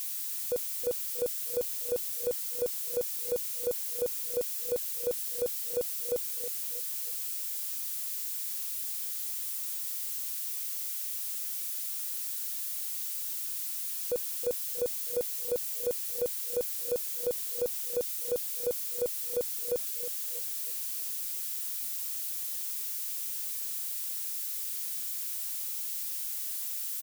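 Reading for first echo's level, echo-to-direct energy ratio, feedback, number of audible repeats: -12.0 dB, -11.5 dB, 39%, 3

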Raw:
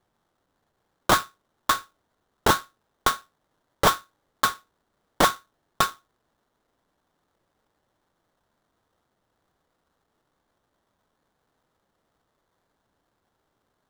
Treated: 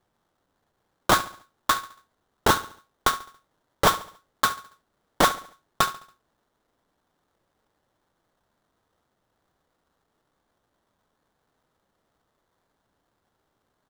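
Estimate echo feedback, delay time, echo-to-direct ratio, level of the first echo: 42%, 70 ms, -16.0 dB, -17.0 dB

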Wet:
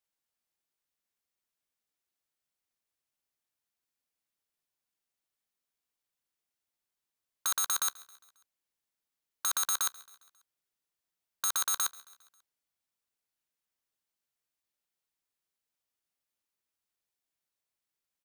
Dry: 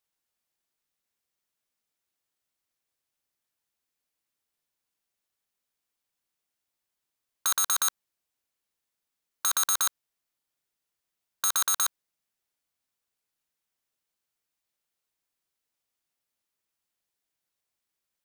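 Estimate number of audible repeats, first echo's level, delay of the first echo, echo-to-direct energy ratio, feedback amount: 3, -21.5 dB, 0.135 s, -20.0 dB, 54%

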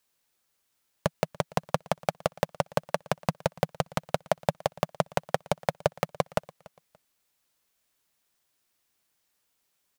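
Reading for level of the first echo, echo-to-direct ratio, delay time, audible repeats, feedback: -23.0 dB, -22.5 dB, 0.288 s, 2, 27%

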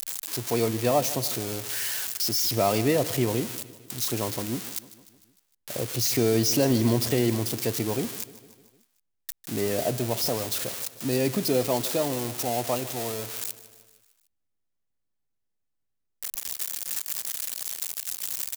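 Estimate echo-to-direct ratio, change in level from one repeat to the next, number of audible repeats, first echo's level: -15.0 dB, -4.5 dB, 4, -17.0 dB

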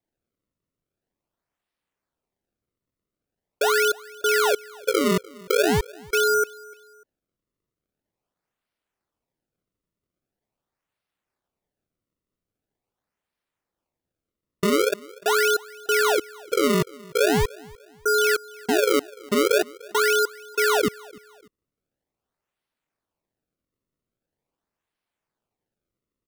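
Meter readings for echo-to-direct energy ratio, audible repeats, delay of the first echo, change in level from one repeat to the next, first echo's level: -22.5 dB, 2, 0.297 s, -9.0 dB, -23.0 dB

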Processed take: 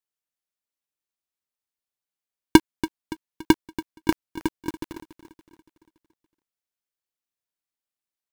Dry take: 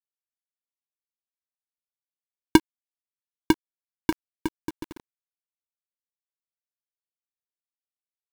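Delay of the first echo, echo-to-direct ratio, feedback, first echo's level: 0.284 s, -14.0 dB, 49%, -15.0 dB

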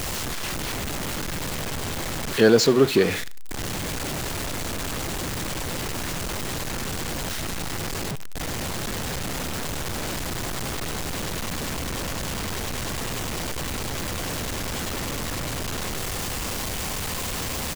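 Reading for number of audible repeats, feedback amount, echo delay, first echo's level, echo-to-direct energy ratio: 2, 28%, 74 ms, -22.0 dB, -21.5 dB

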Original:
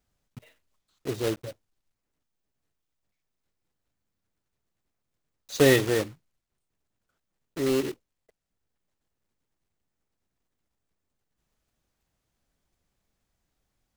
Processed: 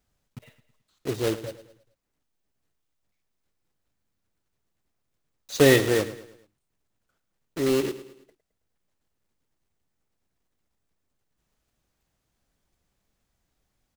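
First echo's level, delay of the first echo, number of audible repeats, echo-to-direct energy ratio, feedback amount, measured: -15.0 dB, 0.108 s, 3, -14.0 dB, 45%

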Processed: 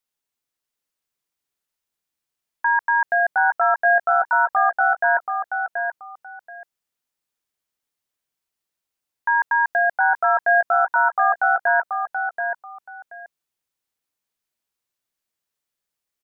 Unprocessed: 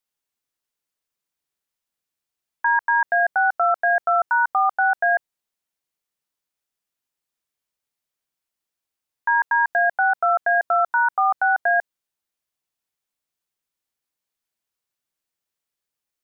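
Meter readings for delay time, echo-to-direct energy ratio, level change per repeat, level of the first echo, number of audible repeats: 0.73 s, -6.0 dB, -14.0 dB, -6.0 dB, 2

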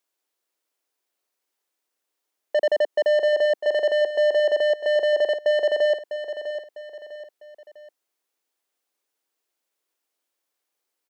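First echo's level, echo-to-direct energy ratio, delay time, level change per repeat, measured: -10.0 dB, -9.5 dB, 0.651 s, -8.0 dB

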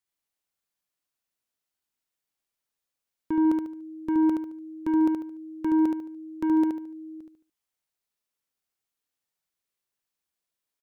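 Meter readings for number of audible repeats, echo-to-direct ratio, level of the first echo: 4, -3.0 dB, -3.5 dB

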